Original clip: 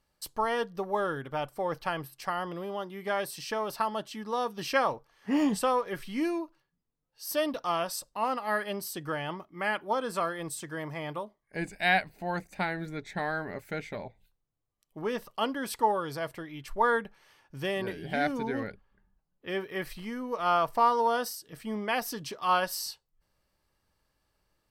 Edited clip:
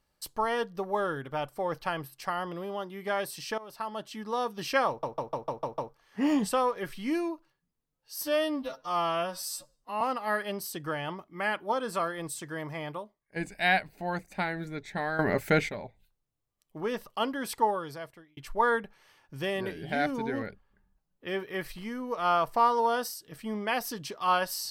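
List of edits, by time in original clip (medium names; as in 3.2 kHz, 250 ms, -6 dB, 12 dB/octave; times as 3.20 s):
3.58–4.20 s: fade in, from -17 dB
4.88 s: stutter 0.15 s, 7 plays
7.33–8.22 s: stretch 2×
11.01–11.57 s: fade out, to -10 dB
13.40–13.90 s: gain +11.5 dB
15.83–16.58 s: fade out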